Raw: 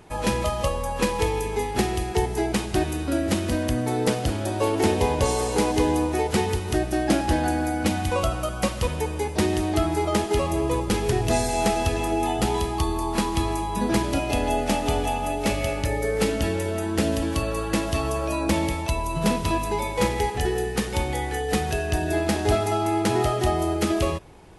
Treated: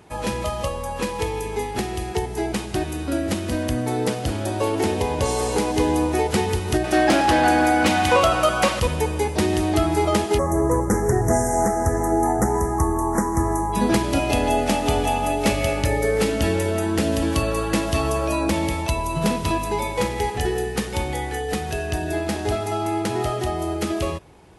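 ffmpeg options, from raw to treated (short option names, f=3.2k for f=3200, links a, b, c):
-filter_complex "[0:a]asettb=1/sr,asplit=3[a][b][c];[a]atrim=end=6.844[d];[b]atrim=start=6.84:end=8.8,asetpts=PTS-STARTPTS,afade=t=in:d=0.004:c=qsin,afade=t=out:st=1.956:d=0.004:c=qsin,asplit=2[e][f];[f]highpass=f=720:p=1,volume=16dB,asoftclip=type=tanh:threshold=-8.5dB[g];[e][g]amix=inputs=2:normalize=0,lowpass=f=3.7k:p=1,volume=-6dB[h];[c]atrim=start=8.796[i];[d][h]acrossfade=d=0.004:c1=hsin:c2=qsin[j];[j][i]acrossfade=d=0.004:c1=qsin:c2=hsin,asplit=3[k][l][m];[k]afade=t=out:st=10.37:d=0.02[n];[l]asuperstop=centerf=3400:order=12:qfactor=0.89,afade=t=in:st=10.37:d=0.02,afade=t=out:st=13.72:d=0.02[o];[m]afade=t=in:st=13.72:d=0.02[p];[n][o][p]amix=inputs=3:normalize=0,highpass=45,alimiter=limit=-13dB:level=0:latency=1:release=276,dynaudnorm=f=350:g=31:m=4.5dB"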